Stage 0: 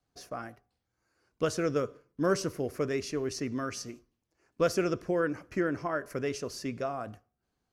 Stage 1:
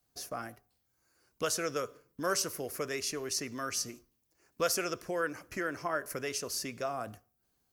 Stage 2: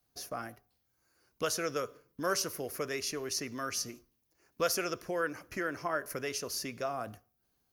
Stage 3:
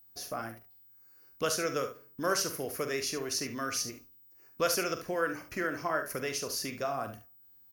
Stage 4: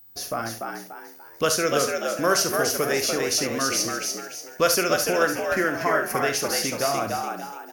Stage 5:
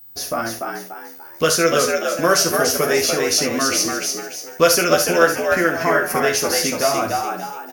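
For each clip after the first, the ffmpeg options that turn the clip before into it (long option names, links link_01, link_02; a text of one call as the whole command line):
ffmpeg -i in.wav -filter_complex "[0:a]aemphasis=mode=production:type=50fm,acrossover=split=530[link_01][link_02];[link_01]acompressor=threshold=-42dB:ratio=4[link_03];[link_03][link_02]amix=inputs=2:normalize=0" out.wav
ffmpeg -i in.wav -af "equalizer=frequency=7900:width_type=o:width=0.21:gain=-10.5" out.wav
ffmpeg -i in.wav -af "aecho=1:1:44|71:0.316|0.282,aeval=exprs='val(0)+0.00141*sin(2*PI*16000*n/s)':channel_layout=same,volume=1.5dB" out.wav
ffmpeg -i in.wav -filter_complex "[0:a]asplit=6[link_01][link_02][link_03][link_04][link_05][link_06];[link_02]adelay=292,afreqshift=76,volume=-4dB[link_07];[link_03]adelay=584,afreqshift=152,volume=-12.6dB[link_08];[link_04]adelay=876,afreqshift=228,volume=-21.3dB[link_09];[link_05]adelay=1168,afreqshift=304,volume=-29.9dB[link_10];[link_06]adelay=1460,afreqshift=380,volume=-38.5dB[link_11];[link_01][link_07][link_08][link_09][link_10][link_11]amix=inputs=6:normalize=0,volume=8.5dB" out.wav
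ffmpeg -i in.wav -filter_complex "[0:a]asplit=2[link_01][link_02];[link_02]adelay=12,volume=-4dB[link_03];[link_01][link_03]amix=inputs=2:normalize=0,volume=4dB" out.wav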